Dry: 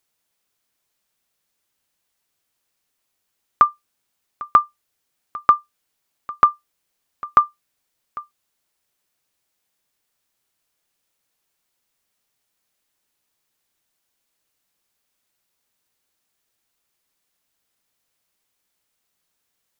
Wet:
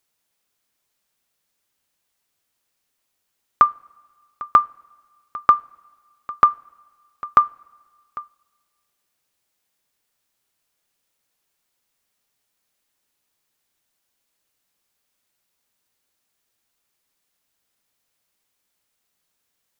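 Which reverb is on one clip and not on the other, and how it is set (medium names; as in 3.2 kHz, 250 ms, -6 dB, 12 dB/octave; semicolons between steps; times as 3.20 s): two-slope reverb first 0.35 s, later 1.7 s, from -17 dB, DRR 16.5 dB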